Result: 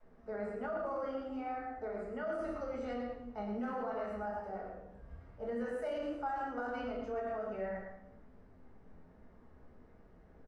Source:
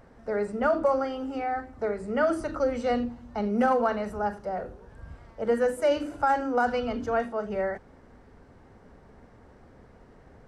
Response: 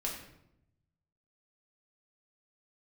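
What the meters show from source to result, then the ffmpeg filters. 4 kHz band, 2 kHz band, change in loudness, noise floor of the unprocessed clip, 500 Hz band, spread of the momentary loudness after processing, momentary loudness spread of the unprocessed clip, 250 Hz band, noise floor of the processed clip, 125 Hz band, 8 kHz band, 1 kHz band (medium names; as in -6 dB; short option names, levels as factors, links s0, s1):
-14.5 dB, -12.5 dB, -12.0 dB, -54 dBFS, -12.0 dB, 7 LU, 10 LU, -11.5 dB, -60 dBFS, -10.5 dB, under -15 dB, -12.5 dB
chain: -filter_complex "[0:a]aecho=1:1:111:0.473[s0];[1:a]atrim=start_sample=2205[s1];[s0][s1]afir=irnorm=-1:irlink=0,alimiter=limit=0.133:level=0:latency=1:release=21,adynamicequalizer=threshold=0.00891:dfrequency=140:dqfactor=0.76:tfrequency=140:tqfactor=0.76:attack=5:release=100:ratio=0.375:range=2.5:mode=cutabove:tftype=bell,lowpass=f=3100:p=1,flanger=delay=9.3:depth=6:regen=69:speed=1.3:shape=triangular,volume=0.398"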